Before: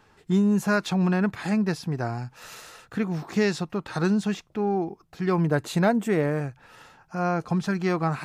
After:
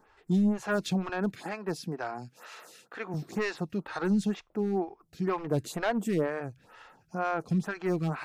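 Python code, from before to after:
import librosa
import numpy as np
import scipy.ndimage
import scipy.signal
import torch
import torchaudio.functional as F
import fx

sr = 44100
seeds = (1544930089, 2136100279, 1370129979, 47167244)

y = fx.highpass(x, sr, hz=200.0, slope=12, at=(1.09, 3.14))
y = np.clip(y, -10.0 ** (-18.5 / 20.0), 10.0 ** (-18.5 / 20.0))
y = fx.stagger_phaser(y, sr, hz=2.1)
y = y * librosa.db_to_amplitude(-1.5)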